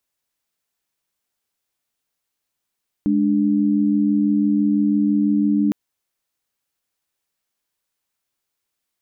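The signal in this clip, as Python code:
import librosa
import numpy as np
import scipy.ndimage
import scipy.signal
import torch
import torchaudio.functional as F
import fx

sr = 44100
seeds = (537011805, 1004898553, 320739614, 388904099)

y = fx.chord(sr, length_s=2.66, notes=(56, 62), wave='sine', level_db=-17.5)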